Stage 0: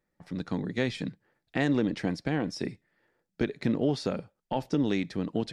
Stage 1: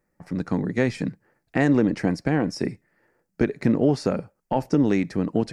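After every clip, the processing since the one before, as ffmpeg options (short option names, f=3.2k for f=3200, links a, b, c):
-af "equalizer=f=3.5k:t=o:w=0.61:g=-14,volume=7dB"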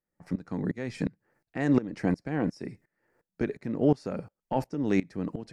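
-af "aeval=exprs='val(0)*pow(10,-20*if(lt(mod(-2.8*n/s,1),2*abs(-2.8)/1000),1-mod(-2.8*n/s,1)/(2*abs(-2.8)/1000),(mod(-2.8*n/s,1)-2*abs(-2.8)/1000)/(1-2*abs(-2.8)/1000))/20)':c=same"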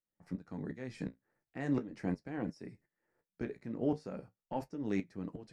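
-af "flanger=delay=9.4:depth=7.7:regen=-47:speed=0.4:shape=sinusoidal,volume=-5.5dB"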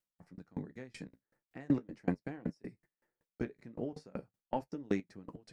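-af "aeval=exprs='val(0)*pow(10,-30*if(lt(mod(5.3*n/s,1),2*abs(5.3)/1000),1-mod(5.3*n/s,1)/(2*abs(5.3)/1000),(mod(5.3*n/s,1)-2*abs(5.3)/1000)/(1-2*abs(5.3)/1000))/20)':c=same,volume=7dB"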